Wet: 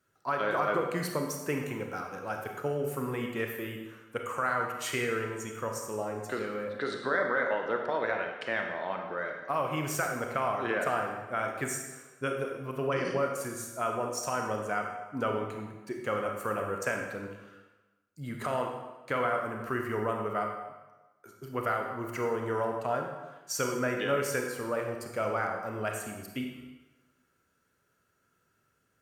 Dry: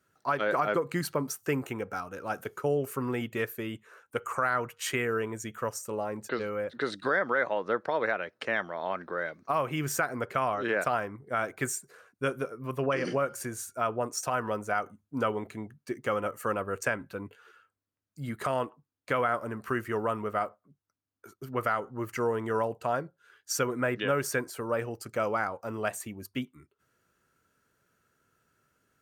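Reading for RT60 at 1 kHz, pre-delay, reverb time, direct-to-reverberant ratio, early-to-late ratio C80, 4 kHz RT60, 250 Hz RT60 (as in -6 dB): 1.2 s, 28 ms, 1.1 s, 2.0 dB, 5.5 dB, 1.0 s, 1.1 s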